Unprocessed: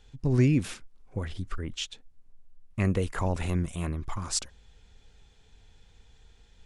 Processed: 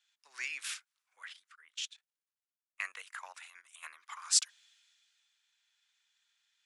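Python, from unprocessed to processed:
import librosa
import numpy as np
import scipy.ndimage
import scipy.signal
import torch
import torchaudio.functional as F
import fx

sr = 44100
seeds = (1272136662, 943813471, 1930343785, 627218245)

y = fx.level_steps(x, sr, step_db=13, at=(1.33, 3.83))
y = scipy.signal.sosfilt(scipy.signal.butter(4, 1300.0, 'highpass', fs=sr, output='sos'), y)
y = fx.band_widen(y, sr, depth_pct=40)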